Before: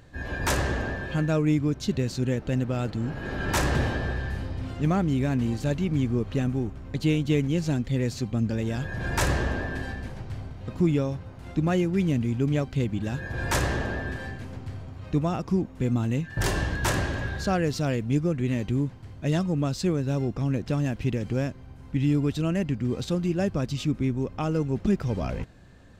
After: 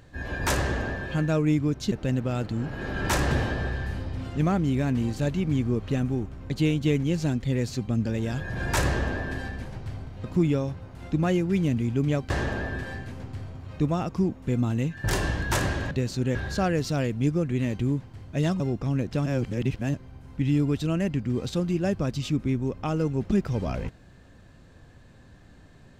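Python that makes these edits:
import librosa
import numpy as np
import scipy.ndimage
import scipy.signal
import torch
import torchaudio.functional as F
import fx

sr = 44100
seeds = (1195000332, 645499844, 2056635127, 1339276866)

y = fx.edit(x, sr, fx.move(start_s=1.92, length_s=0.44, to_s=17.24),
    fx.cut(start_s=12.74, length_s=0.89),
    fx.cut(start_s=19.49, length_s=0.66),
    fx.reverse_span(start_s=20.81, length_s=0.68), tone=tone)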